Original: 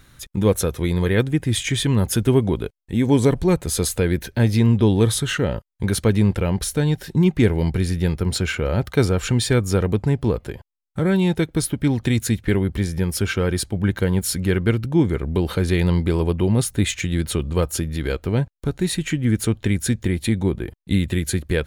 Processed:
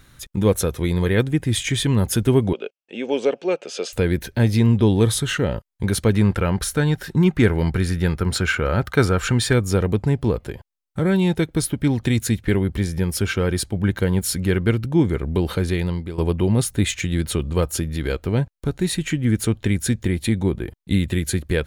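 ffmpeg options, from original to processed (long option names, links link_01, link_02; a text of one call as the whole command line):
ffmpeg -i in.wav -filter_complex "[0:a]asettb=1/sr,asplit=3[link_01][link_02][link_03];[link_01]atrim=end=2.534[link_04];[link_02]atrim=start=2.53:end=3.93,asetpts=PTS-STARTPTS,afade=type=in:duration=0.004:curve=qsin,afade=type=out:start_time=1.396:duration=0.004:curve=qsin,highpass=frequency=310:width=0.5412,highpass=frequency=310:width=1.3066,equalizer=frequency=310:width_type=q:width=4:gain=-8,equalizer=frequency=570:width_type=q:width=4:gain=5,equalizer=frequency=1000:width_type=q:width=4:gain=-10,equalizer=frequency=1900:width_type=q:width=4:gain=-7,equalizer=frequency=2700:width_type=q:width=4:gain=10,equalizer=frequency=4000:width_type=q:width=4:gain=-9,lowpass=frequency=5600:width=0.5412,lowpass=frequency=5600:width=1.3066[link_05];[link_03]atrim=start=3.926[link_06];[link_04][link_05]acrossfade=duration=0.004:curve1=hsin:curve2=qsin[link_07];[link_07][link_06]acrossfade=duration=0.004:curve1=qsin:curve2=hsin,asettb=1/sr,asplit=3[link_08][link_09][link_10];[link_08]atrim=end=6.144[link_11];[link_09]atrim=start=6.14:end=9.53,asetpts=PTS-STARTPTS,afade=type=in:duration=0.004:curve=qsin,afade=type=out:start_time=3.386:duration=0.004:curve=qsin,equalizer=frequency=1400:width=1.7:gain=8[link_12];[link_10]atrim=start=9.526[link_13];[link_11][link_12]acrossfade=duration=0.004:curve1=hsin:curve2=qsin[link_14];[link_14][link_13]acrossfade=duration=0.004:curve1=qsin:curve2=hsin,asplit=2[link_15][link_16];[link_15]atrim=end=16.18,asetpts=PTS-STARTPTS,afade=type=out:start_time=15.51:duration=0.67:silence=0.199526[link_17];[link_16]atrim=start=16.18,asetpts=PTS-STARTPTS,afade=type=in:duration=0.004:curve=hsin:silence=0.199526[link_18];[link_17][link_18]concat=n=2:v=0:a=1" out.wav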